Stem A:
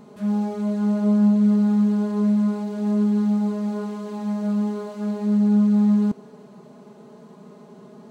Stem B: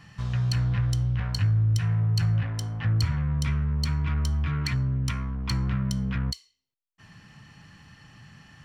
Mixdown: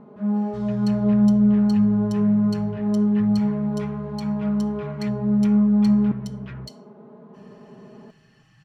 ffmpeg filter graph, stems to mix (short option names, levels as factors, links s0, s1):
-filter_complex "[0:a]lowpass=1500,volume=1,asplit=2[s0][s1];[s1]volume=0.126[s2];[1:a]aecho=1:1:6.3:0.77,adelay=350,volume=0.335[s3];[s2]aecho=0:1:322:1[s4];[s0][s3][s4]amix=inputs=3:normalize=0"